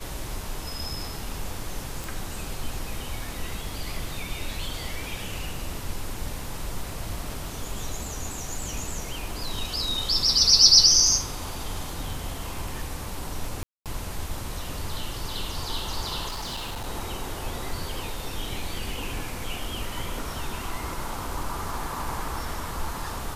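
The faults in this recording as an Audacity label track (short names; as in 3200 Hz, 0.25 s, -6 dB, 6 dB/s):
2.040000	2.040000	pop
13.630000	13.860000	gap 0.227 s
16.280000	16.870000	clipped -29.5 dBFS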